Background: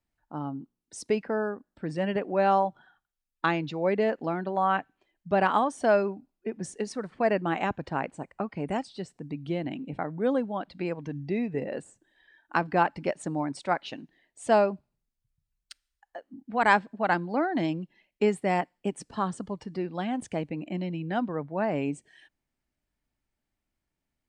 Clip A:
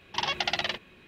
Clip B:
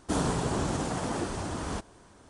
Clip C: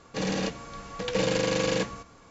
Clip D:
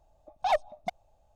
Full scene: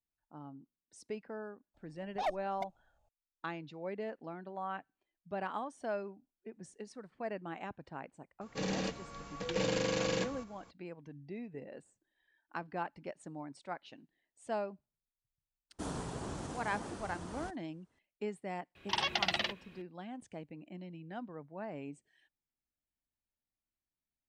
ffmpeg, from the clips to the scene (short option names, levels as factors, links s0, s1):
-filter_complex "[0:a]volume=0.178[s0];[2:a]agate=range=0.282:threshold=0.00316:ratio=16:release=100:detection=peak[s1];[4:a]atrim=end=1.35,asetpts=PTS-STARTPTS,volume=0.355,afade=t=in:d=0.004:c=hsin,afade=t=out:st=1.346:d=0.004:c=hsin,adelay=1740[s2];[3:a]atrim=end=2.3,asetpts=PTS-STARTPTS,volume=0.447,afade=t=in:d=0.004:c=hsin,afade=t=out:st=2.296:d=0.004:c=hsin,adelay=8410[s3];[s1]atrim=end=2.29,asetpts=PTS-STARTPTS,volume=0.251,afade=t=in:d=0.004:c=hsin,afade=t=out:st=2.286:d=0.004:c=hsin,adelay=15700[s4];[1:a]atrim=end=1.07,asetpts=PTS-STARTPTS,volume=0.631,afade=t=in:d=0.004:c=hsin,afade=t=out:st=1.066:d=0.004:c=hsin,adelay=18750[s5];[s0][s2][s3][s4][s5]amix=inputs=5:normalize=0"